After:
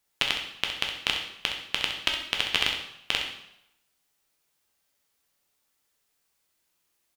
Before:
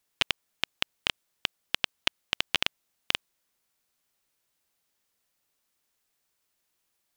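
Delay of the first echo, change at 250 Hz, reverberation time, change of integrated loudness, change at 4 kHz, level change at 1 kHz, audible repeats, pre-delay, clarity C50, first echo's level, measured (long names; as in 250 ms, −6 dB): 65 ms, +2.0 dB, 0.80 s, +3.0 dB, +3.0 dB, +3.0 dB, 1, 4 ms, 4.5 dB, −9.5 dB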